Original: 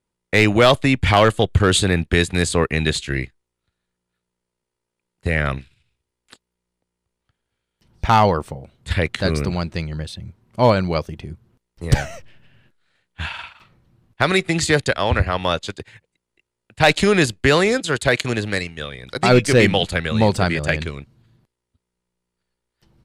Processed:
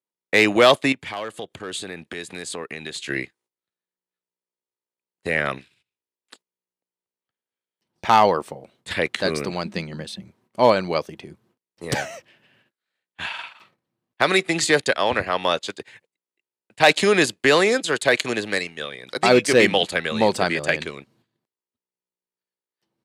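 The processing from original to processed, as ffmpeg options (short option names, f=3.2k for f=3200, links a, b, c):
-filter_complex "[0:a]asettb=1/sr,asplit=3[a][b][c];[a]atrim=end=0.924[d];[b]atrim=start=0.92:end=3.09,asetpts=PTS-STARTPTS,afade=t=in:d=0.004:c=qsin,afade=t=out:st=2.166:d=0.004:c=qsin,acompressor=threshold=-27dB:ratio=5:attack=3.2:release=140:knee=1:detection=peak[e];[c]atrim=start=3.086[f];[d][e]acrossfade=d=0.004:c1=hsin:c2=qsin[g];[g][f]acrossfade=d=0.004:c1=qsin:c2=hsin,asettb=1/sr,asplit=3[h][i][j];[h]atrim=end=9.654[k];[i]atrim=start=9.65:end=10.22,asetpts=PTS-STARTPTS,afade=t=in:d=0.004:c=qsin,afade=t=out:st=0.566:d=0.004:c=qsin,equalizer=f=200:w=4.2:g=14.5[l];[j]atrim=start=10.216[m];[k][l]acrossfade=d=0.004:c1=hsin:c2=qsin[n];[n][m]acrossfade=d=0.004:c1=qsin:c2=hsin,agate=range=-14dB:threshold=-53dB:ratio=16:detection=peak,highpass=270,bandreject=f=1.4k:w=19"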